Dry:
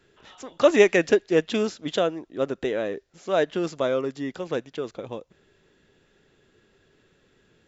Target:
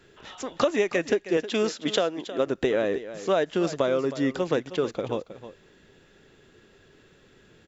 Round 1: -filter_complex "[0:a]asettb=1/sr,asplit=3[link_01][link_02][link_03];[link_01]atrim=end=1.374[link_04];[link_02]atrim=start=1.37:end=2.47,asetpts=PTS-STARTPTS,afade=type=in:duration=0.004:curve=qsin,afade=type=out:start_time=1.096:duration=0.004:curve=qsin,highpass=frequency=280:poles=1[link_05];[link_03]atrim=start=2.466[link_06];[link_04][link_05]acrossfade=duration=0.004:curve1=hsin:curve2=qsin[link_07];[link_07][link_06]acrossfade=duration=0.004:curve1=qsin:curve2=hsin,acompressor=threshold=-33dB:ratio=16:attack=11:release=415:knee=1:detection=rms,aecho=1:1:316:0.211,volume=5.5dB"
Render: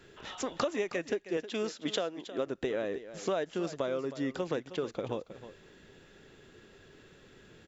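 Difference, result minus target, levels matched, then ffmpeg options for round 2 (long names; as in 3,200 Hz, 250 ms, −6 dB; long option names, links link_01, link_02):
downward compressor: peak gain reduction +9 dB
-filter_complex "[0:a]asettb=1/sr,asplit=3[link_01][link_02][link_03];[link_01]atrim=end=1.374[link_04];[link_02]atrim=start=1.37:end=2.47,asetpts=PTS-STARTPTS,afade=type=in:duration=0.004:curve=qsin,afade=type=out:start_time=1.096:duration=0.004:curve=qsin,highpass=frequency=280:poles=1[link_05];[link_03]atrim=start=2.466[link_06];[link_04][link_05]acrossfade=duration=0.004:curve1=hsin:curve2=qsin[link_07];[link_07][link_06]acrossfade=duration=0.004:curve1=qsin:curve2=hsin,acompressor=threshold=-23.5dB:ratio=16:attack=11:release=415:knee=1:detection=rms,aecho=1:1:316:0.211,volume=5.5dB"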